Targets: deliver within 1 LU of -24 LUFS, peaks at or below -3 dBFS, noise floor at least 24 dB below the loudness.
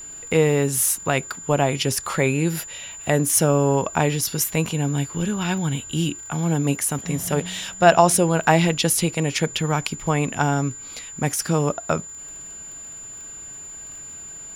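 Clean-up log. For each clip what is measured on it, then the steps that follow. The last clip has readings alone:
ticks 21/s; steady tone 7100 Hz; tone level -35 dBFS; loudness -21.5 LUFS; peak -2.0 dBFS; loudness target -24.0 LUFS
-> de-click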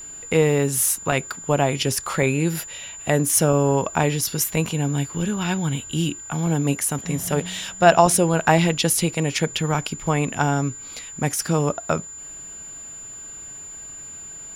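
ticks 0.14/s; steady tone 7100 Hz; tone level -35 dBFS
-> notch 7100 Hz, Q 30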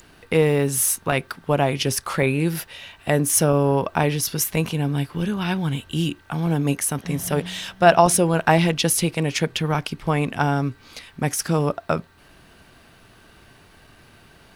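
steady tone none; loudness -21.5 LUFS; peak -2.0 dBFS; loudness target -24.0 LUFS
-> gain -2.5 dB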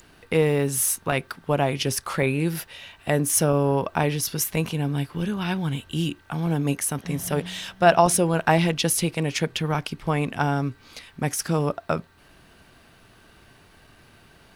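loudness -24.0 LUFS; peak -4.5 dBFS; noise floor -54 dBFS

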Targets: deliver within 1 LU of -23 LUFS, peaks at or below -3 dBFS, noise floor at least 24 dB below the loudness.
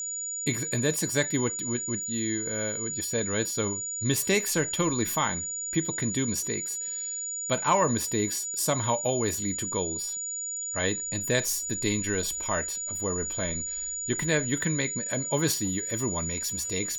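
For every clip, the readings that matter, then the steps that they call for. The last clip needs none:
steady tone 6900 Hz; tone level -31 dBFS; loudness -27.5 LUFS; peak -10.5 dBFS; loudness target -23.0 LUFS
-> notch 6900 Hz, Q 30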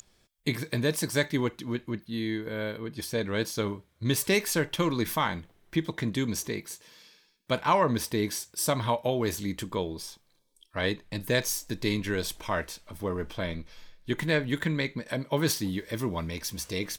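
steady tone none; loudness -30.0 LUFS; peak -11.0 dBFS; loudness target -23.0 LUFS
-> gain +7 dB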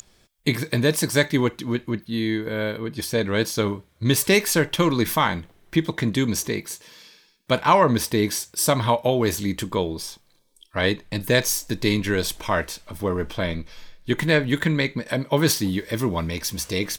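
loudness -23.0 LUFS; peak -4.0 dBFS; noise floor -60 dBFS

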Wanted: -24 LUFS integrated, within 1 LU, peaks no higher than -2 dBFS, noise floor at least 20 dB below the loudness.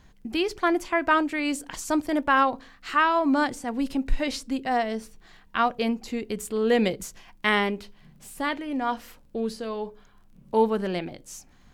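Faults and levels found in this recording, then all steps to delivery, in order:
ticks 15/s; loudness -26.0 LUFS; peak -8.5 dBFS; loudness target -24.0 LUFS
-> de-click; gain +2 dB

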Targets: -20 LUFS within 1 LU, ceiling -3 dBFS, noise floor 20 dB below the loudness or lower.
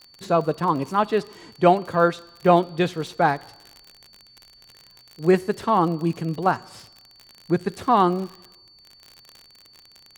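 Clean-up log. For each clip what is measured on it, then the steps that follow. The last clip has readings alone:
ticks 48/s; steady tone 4500 Hz; tone level -50 dBFS; loudness -22.0 LUFS; peak -2.5 dBFS; loudness target -20.0 LUFS
-> de-click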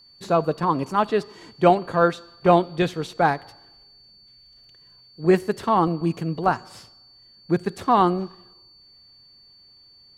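ticks 0/s; steady tone 4500 Hz; tone level -50 dBFS
-> notch 4500 Hz, Q 30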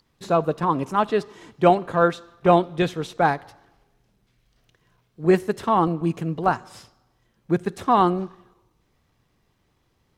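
steady tone none; loudness -22.0 LUFS; peak -2.5 dBFS; loudness target -20.0 LUFS
-> gain +2 dB; limiter -3 dBFS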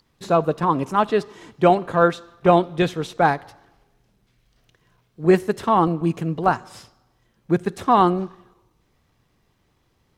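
loudness -20.5 LUFS; peak -3.0 dBFS; noise floor -66 dBFS

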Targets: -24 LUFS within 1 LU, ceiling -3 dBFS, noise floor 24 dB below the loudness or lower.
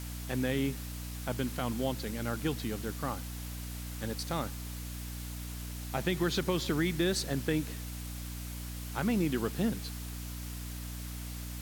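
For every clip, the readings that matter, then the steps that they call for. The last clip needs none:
hum 60 Hz; harmonics up to 300 Hz; hum level -38 dBFS; noise floor -41 dBFS; noise floor target -59 dBFS; loudness -35.0 LUFS; peak -17.0 dBFS; loudness target -24.0 LUFS
-> de-hum 60 Hz, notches 5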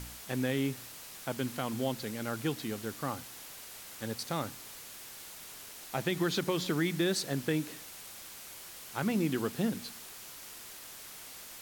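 hum none; noise floor -48 dBFS; noise floor target -60 dBFS
-> denoiser 12 dB, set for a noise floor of -48 dBFS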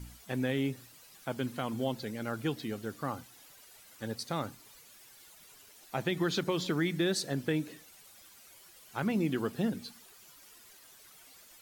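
noise floor -57 dBFS; noise floor target -59 dBFS
-> denoiser 6 dB, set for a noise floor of -57 dBFS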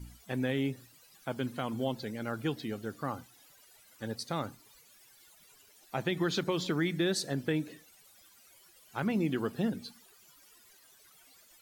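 noise floor -61 dBFS; loudness -34.5 LUFS; peak -17.5 dBFS; loudness target -24.0 LUFS
-> gain +10.5 dB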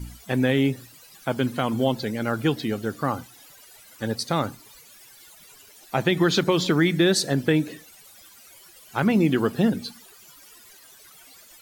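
loudness -24.0 LUFS; peak -7.0 dBFS; noise floor -50 dBFS

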